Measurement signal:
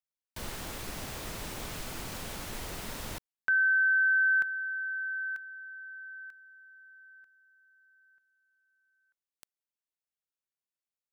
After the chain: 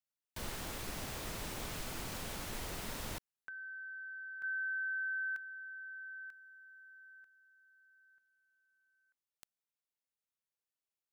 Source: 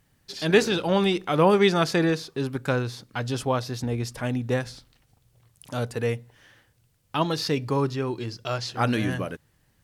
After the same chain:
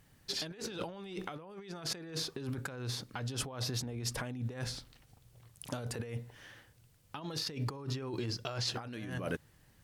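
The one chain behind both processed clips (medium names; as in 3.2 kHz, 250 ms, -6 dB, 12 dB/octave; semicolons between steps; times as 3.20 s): compressor with a negative ratio -34 dBFS, ratio -1; trim -6.5 dB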